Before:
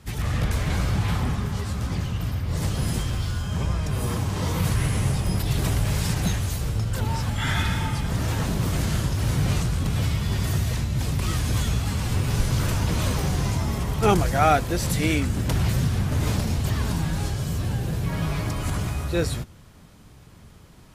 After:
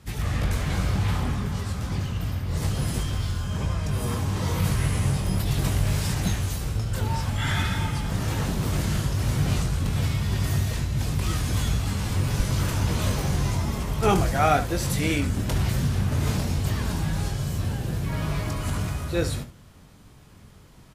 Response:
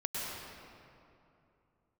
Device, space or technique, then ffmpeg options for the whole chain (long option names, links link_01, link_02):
slapback doubling: -filter_complex "[0:a]asplit=3[link_01][link_02][link_03];[link_02]adelay=21,volume=-8dB[link_04];[link_03]adelay=71,volume=-12dB[link_05];[link_01][link_04][link_05]amix=inputs=3:normalize=0,volume=-2dB"